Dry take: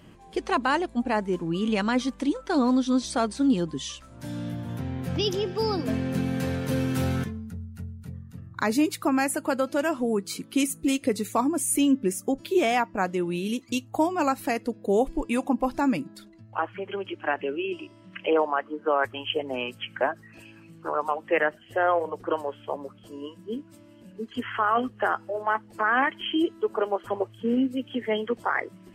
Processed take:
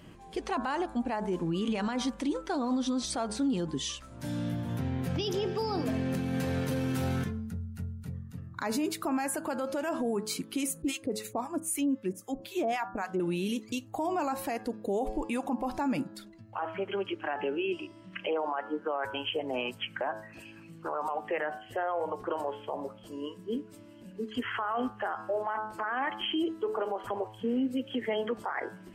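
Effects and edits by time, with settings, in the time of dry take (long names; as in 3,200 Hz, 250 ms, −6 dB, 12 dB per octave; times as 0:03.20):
0:10.82–0:13.20: two-band tremolo in antiphase 3.8 Hz, depth 100%, crossover 860 Hz
whole clip: hum removal 107.9 Hz, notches 16; dynamic equaliser 790 Hz, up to +5 dB, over −37 dBFS, Q 1.8; brickwall limiter −23 dBFS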